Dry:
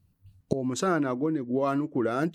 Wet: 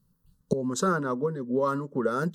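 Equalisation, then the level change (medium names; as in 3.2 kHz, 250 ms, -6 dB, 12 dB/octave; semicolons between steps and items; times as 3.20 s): static phaser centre 470 Hz, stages 8; +3.5 dB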